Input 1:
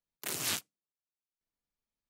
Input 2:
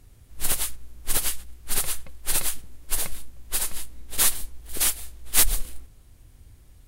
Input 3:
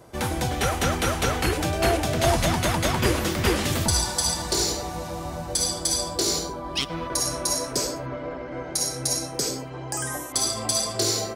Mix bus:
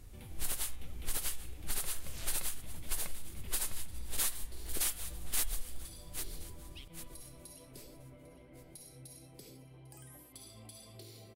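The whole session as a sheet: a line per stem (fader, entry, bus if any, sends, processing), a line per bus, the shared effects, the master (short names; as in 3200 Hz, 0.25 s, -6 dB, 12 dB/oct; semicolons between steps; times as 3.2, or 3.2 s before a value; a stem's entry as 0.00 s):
-16.0 dB, 1.70 s, no send, no echo send, dry
-1.0 dB, 0.00 s, no send, echo send -21.5 dB, de-hum 132.2 Hz, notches 30
-14.5 dB, 0.00 s, no send, echo send -18 dB, EQ curve 110 Hz 0 dB, 1600 Hz -17 dB, 2200 Hz -5 dB, 3400 Hz -5 dB, 6600 Hz -20 dB, 11000 Hz -2 dB; compressor, threshold -34 dBFS, peak gain reduction 13.5 dB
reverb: off
echo: feedback echo 0.799 s, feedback 38%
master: compressor 4:1, threshold -31 dBFS, peak gain reduction 15 dB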